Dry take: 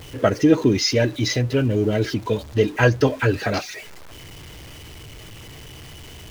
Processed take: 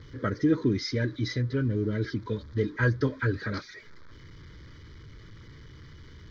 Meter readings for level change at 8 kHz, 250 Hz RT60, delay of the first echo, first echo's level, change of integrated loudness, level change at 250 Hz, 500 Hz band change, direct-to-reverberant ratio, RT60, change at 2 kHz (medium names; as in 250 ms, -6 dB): under -15 dB, no reverb, no echo, no echo, -8.5 dB, -7.5 dB, -11.5 dB, no reverb, no reverb, -7.5 dB